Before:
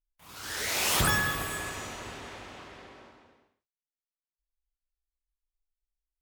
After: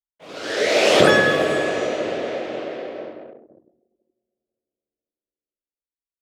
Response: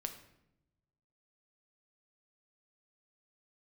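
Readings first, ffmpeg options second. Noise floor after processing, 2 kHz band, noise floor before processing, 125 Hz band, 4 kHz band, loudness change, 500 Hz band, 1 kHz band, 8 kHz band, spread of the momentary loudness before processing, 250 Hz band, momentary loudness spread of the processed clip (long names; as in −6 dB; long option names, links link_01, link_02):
below −85 dBFS, +10.0 dB, below −85 dBFS, +4.0 dB, +8.5 dB, +9.5 dB, +23.0 dB, +10.0 dB, −0.5 dB, 21 LU, +15.5 dB, 19 LU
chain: -filter_complex "[0:a]asplit=2[link_01][link_02];[link_02]adelay=500,lowpass=frequency=1300:poles=1,volume=-17dB,asplit=2[link_03][link_04];[link_04]adelay=500,lowpass=frequency=1300:poles=1,volume=0.54,asplit=2[link_05][link_06];[link_06]adelay=500,lowpass=frequency=1300:poles=1,volume=0.54,asplit=2[link_07][link_08];[link_08]adelay=500,lowpass=frequency=1300:poles=1,volume=0.54,asplit=2[link_09][link_10];[link_10]adelay=500,lowpass=frequency=1300:poles=1,volume=0.54[link_11];[link_01][link_03][link_05][link_07][link_09][link_11]amix=inputs=6:normalize=0,asplit=2[link_12][link_13];[1:a]atrim=start_sample=2205[link_14];[link_13][link_14]afir=irnorm=-1:irlink=0,volume=4dB[link_15];[link_12][link_15]amix=inputs=2:normalize=0,anlmdn=0.00398,highpass=340,lowpass=4000,lowshelf=frequency=740:width_type=q:width=3:gain=8,volume=4.5dB"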